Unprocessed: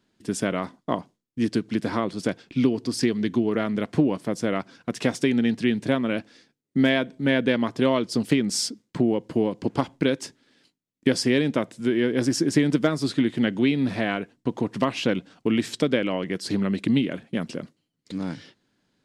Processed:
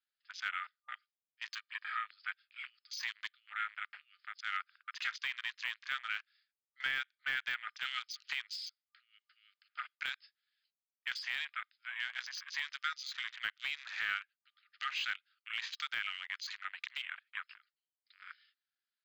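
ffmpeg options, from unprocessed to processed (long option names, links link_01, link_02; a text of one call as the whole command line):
ffmpeg -i in.wav -filter_complex "[0:a]asettb=1/sr,asplit=3[link_01][link_02][link_03];[link_01]atrim=end=1.574[link_04];[link_02]atrim=start=1.57:end=2.09,asetpts=PTS-STARTPTS,afade=type=in:duration=0.004:curve=qsin,afade=type=out:start_time=0.516:duration=0.004:curve=qsin,aecho=1:1:1.7:0.65,atrim=end_sample=22932[link_05];[link_03]atrim=start=2.086[link_06];[link_04][link_05]acrossfade=duration=0.004:curve1=hsin:curve2=qsin[link_07];[link_07][link_06]acrossfade=duration=0.004:curve1=qsin:curve2=hsin,asettb=1/sr,asplit=3[link_08][link_09][link_10];[link_08]atrim=end=10.104[link_11];[link_09]atrim=start=10.1:end=13.01,asetpts=PTS-STARTPTS,afade=type=in:duration=0.004:curve=qsin,afade=type=out:start_time=2.906:duration=0.004:curve=qsin,highpass=frequency=1200:poles=1[link_12];[link_10]atrim=start=13.006[link_13];[link_11][link_12]acrossfade=duration=0.004:curve1=hsin:curve2=qsin[link_14];[link_14][link_13]acrossfade=duration=0.004:curve1=qsin:curve2=hsin,afftfilt=real='re*between(b*sr/4096,1200,5200)':imag='im*between(b*sr/4096,1200,5200)':win_size=4096:overlap=0.75,afwtdn=0.00794,deesser=0.95,volume=-2.5dB" out.wav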